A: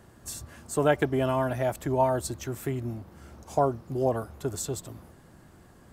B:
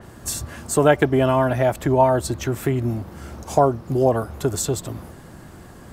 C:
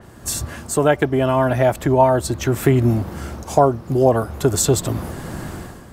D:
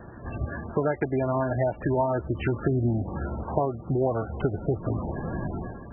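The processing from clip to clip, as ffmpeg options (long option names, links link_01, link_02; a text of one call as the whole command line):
ffmpeg -i in.wav -filter_complex "[0:a]asplit=2[link_01][link_02];[link_02]acompressor=threshold=-33dB:ratio=6,volume=-0.5dB[link_03];[link_01][link_03]amix=inputs=2:normalize=0,adynamicequalizer=threshold=0.00447:dfrequency=4700:dqfactor=0.7:tfrequency=4700:tqfactor=0.7:attack=5:release=100:ratio=0.375:range=3:mode=cutabove:tftype=highshelf,volume=6dB" out.wav
ffmpeg -i in.wav -af "dynaudnorm=framelen=110:gausssize=7:maxgain=13.5dB,volume=-1dB" out.wav
ffmpeg -i in.wav -af "highshelf=frequency=3800:gain=-8.5,acompressor=threshold=-24dB:ratio=3" -ar 22050 -c:a libmp3lame -b:a 8k out.mp3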